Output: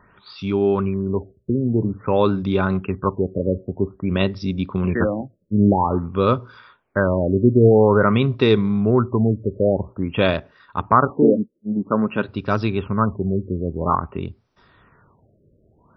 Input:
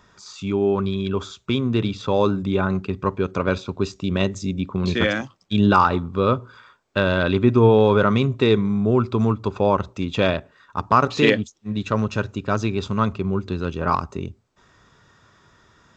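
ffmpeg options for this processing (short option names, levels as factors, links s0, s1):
-filter_complex "[0:a]asettb=1/sr,asplit=3[s0][s1][s2];[s0]atrim=end=11.104[s3];[s1]atrim=start=11.1:end=12.29,asetpts=PTS-STARTPTS,afade=t=in:d=0.004:c=qsin,afade=t=out:st=1.186:d=0.004:c=qsin,lowshelf=f=130:t=q:w=1.5:g=-14[s4];[s2]atrim=start=12.286[s5];[s3][s4]acrossfade=d=0.004:c1=hsin:c2=qsin[s6];[s6][s5]acrossfade=d=0.004:c1=qsin:c2=hsin,afftfilt=real='re*lt(b*sr/1024,600*pow(6100/600,0.5+0.5*sin(2*PI*0.5*pts/sr)))':imag='im*lt(b*sr/1024,600*pow(6100/600,0.5+0.5*sin(2*PI*0.5*pts/sr)))':win_size=1024:overlap=0.75,volume=1.19"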